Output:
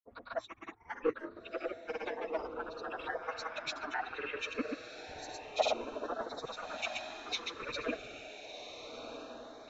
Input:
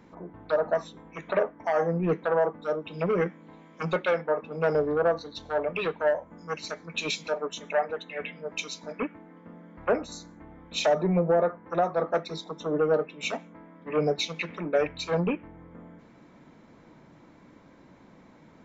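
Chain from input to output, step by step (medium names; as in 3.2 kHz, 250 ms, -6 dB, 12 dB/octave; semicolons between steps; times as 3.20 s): harmonic-percussive separation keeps percussive; gate -58 dBFS, range -53 dB; plain phase-vocoder stretch 0.52×; peaking EQ 170 Hz -5 dB 0.92 oct; granulator 100 ms, grains 20 per s, spray 100 ms, pitch spread up and down by 0 st; treble shelf 6.1 kHz -10.5 dB; echo that smears into a reverb 1359 ms, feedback 42%, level -7.5 dB; LFO notch saw up 0.31 Hz 330–2800 Hz; trim +3.5 dB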